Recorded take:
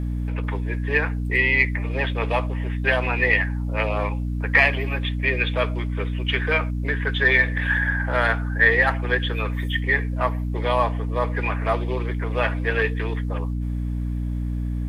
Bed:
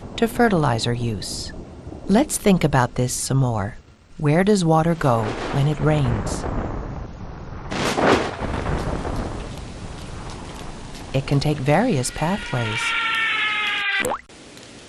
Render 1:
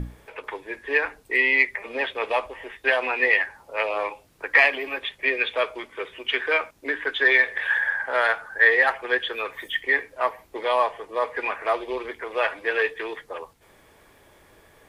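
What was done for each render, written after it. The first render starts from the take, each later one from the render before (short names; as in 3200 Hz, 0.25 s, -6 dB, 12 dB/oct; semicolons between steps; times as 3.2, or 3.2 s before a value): notches 60/120/180/240/300 Hz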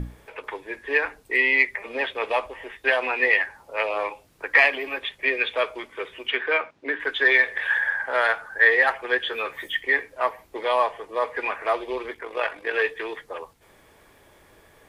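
6.29–7 BPF 120–3500 Hz; 9.22–9.75 doubler 13 ms -6 dB; 12.14–12.74 AM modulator 47 Hz, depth 40%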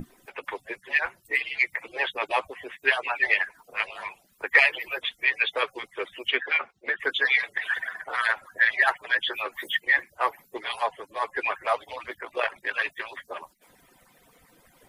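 median-filter separation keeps percussive; high shelf 7400 Hz +8 dB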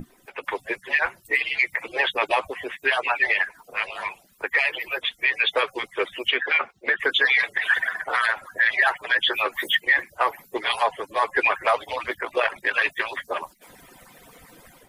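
AGC gain up to 9.5 dB; limiter -10 dBFS, peak gain reduction 8.5 dB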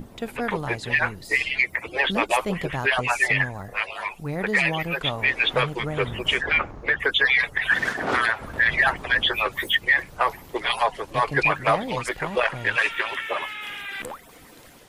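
add bed -12 dB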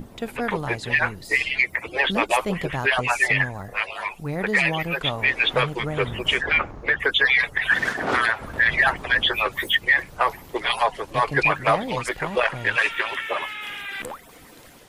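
gain +1 dB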